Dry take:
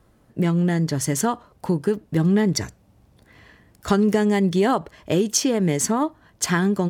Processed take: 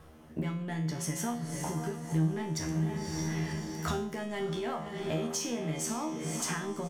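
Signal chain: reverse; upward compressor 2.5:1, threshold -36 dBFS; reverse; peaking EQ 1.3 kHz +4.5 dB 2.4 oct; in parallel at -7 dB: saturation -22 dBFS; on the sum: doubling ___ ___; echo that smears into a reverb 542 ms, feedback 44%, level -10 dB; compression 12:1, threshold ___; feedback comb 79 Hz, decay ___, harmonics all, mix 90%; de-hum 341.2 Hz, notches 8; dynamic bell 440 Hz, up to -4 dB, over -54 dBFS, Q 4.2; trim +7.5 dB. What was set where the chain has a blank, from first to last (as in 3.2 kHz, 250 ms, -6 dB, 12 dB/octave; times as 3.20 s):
13 ms, -7 dB, -28 dBFS, 0.5 s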